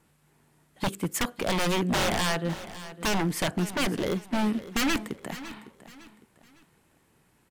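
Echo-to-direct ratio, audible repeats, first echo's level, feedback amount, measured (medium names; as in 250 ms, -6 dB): -14.5 dB, 3, -15.0 dB, 34%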